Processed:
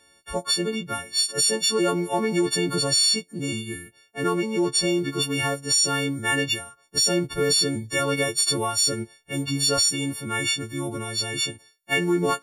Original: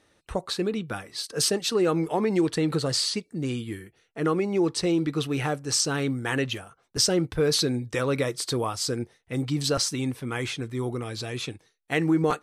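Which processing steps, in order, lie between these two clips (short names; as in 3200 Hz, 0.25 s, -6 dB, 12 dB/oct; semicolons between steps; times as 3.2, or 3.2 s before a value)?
frequency quantiser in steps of 4 st; limiter -11.5 dBFS, peak gain reduction 10.5 dB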